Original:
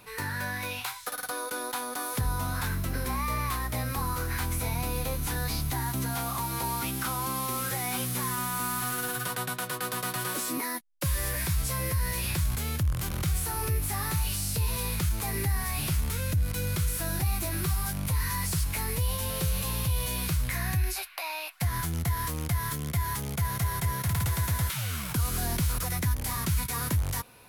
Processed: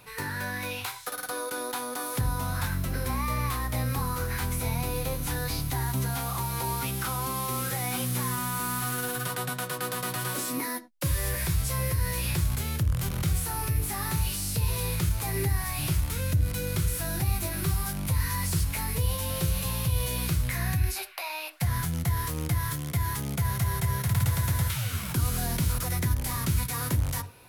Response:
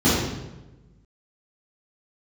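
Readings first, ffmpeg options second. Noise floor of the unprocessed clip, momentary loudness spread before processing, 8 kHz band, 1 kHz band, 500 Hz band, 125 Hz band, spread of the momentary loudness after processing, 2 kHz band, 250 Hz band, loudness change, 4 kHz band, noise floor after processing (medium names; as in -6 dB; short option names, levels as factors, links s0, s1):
-38 dBFS, 3 LU, 0.0 dB, -0.5 dB, +2.0 dB, +2.0 dB, 4 LU, 0.0 dB, +1.5 dB, +1.0 dB, 0.0 dB, -37 dBFS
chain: -filter_complex "[0:a]asplit=2[s0][s1];[1:a]atrim=start_sample=2205,afade=t=out:st=0.18:d=0.01,atrim=end_sample=8379,asetrate=57330,aresample=44100[s2];[s1][s2]afir=irnorm=-1:irlink=0,volume=0.0282[s3];[s0][s3]amix=inputs=2:normalize=0"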